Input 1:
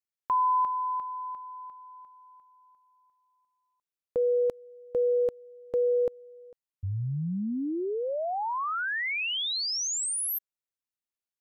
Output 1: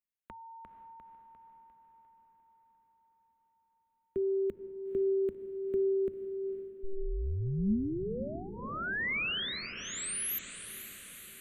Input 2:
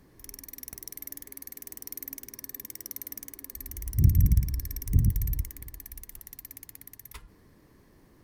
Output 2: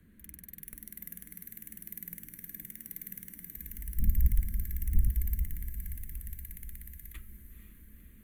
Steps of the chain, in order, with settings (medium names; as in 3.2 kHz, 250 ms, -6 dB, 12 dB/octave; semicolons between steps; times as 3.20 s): peaking EQ 310 Hz +8 dB 0.23 oct; static phaser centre 2.3 kHz, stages 4; echo that smears into a reverb 488 ms, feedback 63%, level -10.5 dB; frequency shift -100 Hz; trim -2.5 dB